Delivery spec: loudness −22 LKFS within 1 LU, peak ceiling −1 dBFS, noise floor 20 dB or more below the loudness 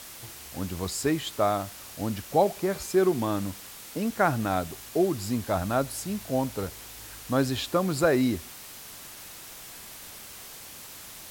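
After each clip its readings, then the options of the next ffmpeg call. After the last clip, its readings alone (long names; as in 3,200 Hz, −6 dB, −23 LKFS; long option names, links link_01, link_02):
background noise floor −44 dBFS; target noise floor −48 dBFS; integrated loudness −28.0 LKFS; sample peak −9.0 dBFS; target loudness −22.0 LKFS
→ -af "afftdn=noise_reduction=6:noise_floor=-44"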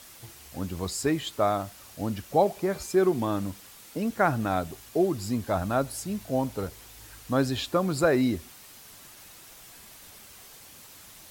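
background noise floor −50 dBFS; integrated loudness −28.0 LKFS; sample peak −9.0 dBFS; target loudness −22.0 LKFS
→ -af "volume=6dB"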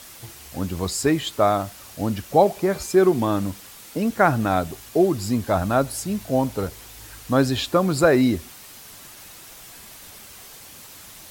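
integrated loudness −22.0 LKFS; sample peak −3.0 dBFS; background noise floor −44 dBFS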